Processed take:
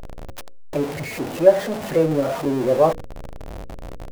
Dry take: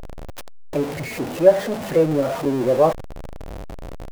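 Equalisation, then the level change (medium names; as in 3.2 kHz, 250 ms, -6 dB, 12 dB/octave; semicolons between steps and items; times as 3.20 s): hum notches 60/120/180/240/300/360/420/480/540 Hz; 0.0 dB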